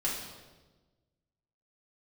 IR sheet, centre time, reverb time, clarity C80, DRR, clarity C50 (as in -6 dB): 57 ms, 1.2 s, 5.0 dB, -6.0 dB, 2.5 dB